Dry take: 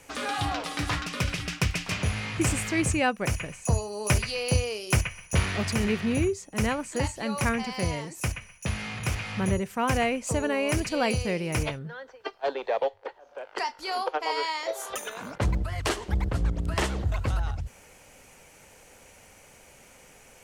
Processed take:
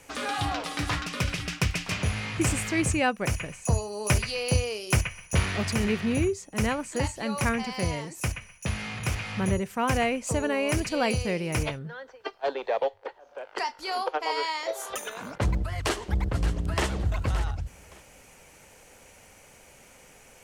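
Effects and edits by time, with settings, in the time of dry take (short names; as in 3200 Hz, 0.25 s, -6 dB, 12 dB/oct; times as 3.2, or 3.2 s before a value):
15.76–16.87 echo throw 0.57 s, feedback 20%, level -12 dB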